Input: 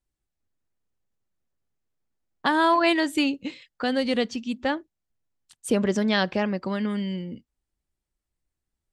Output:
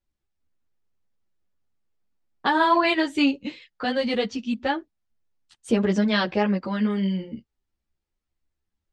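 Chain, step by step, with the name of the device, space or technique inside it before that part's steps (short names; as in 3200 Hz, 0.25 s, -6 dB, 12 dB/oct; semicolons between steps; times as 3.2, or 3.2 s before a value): string-machine ensemble chorus (ensemble effect; LPF 5700 Hz 12 dB/oct); gain +4 dB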